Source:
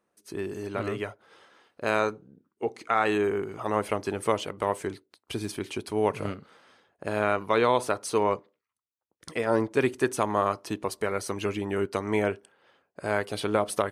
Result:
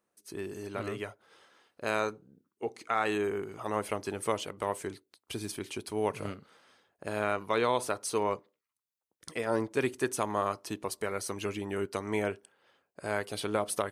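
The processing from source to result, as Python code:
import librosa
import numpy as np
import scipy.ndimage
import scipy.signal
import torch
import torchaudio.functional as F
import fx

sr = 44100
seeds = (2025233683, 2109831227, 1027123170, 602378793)

y = fx.high_shelf(x, sr, hz=4500.0, db=7.0)
y = y * librosa.db_to_amplitude(-5.5)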